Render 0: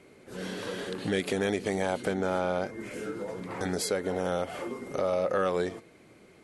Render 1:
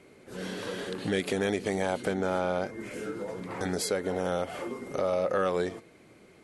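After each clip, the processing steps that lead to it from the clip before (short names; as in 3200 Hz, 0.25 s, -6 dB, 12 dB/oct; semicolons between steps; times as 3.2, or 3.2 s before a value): nothing audible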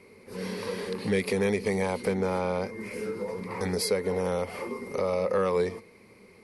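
ripple EQ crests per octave 0.88, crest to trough 10 dB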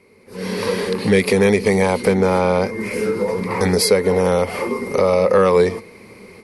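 AGC gain up to 14 dB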